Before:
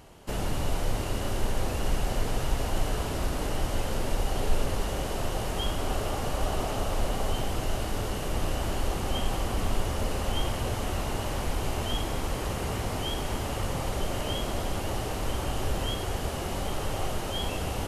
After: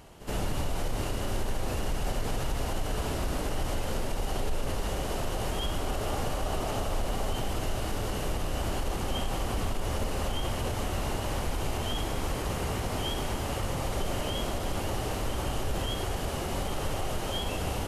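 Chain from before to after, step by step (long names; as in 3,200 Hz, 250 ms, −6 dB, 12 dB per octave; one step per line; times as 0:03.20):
echo ahead of the sound 73 ms −15 dB
brickwall limiter −21 dBFS, peak gain reduction 8 dB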